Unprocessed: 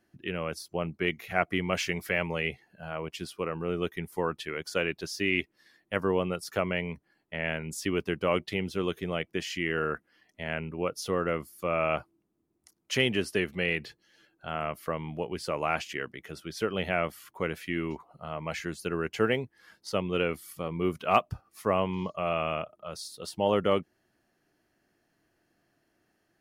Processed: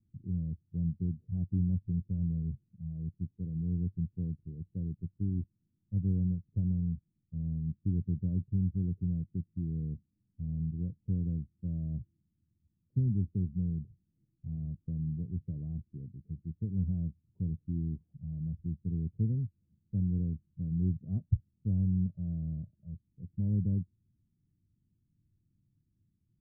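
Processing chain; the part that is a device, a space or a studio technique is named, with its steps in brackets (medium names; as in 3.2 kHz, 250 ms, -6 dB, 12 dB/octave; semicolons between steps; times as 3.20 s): the neighbour's flat through the wall (low-pass 180 Hz 24 dB/octave; peaking EQ 95 Hz +7 dB 0.59 oct); trim +5.5 dB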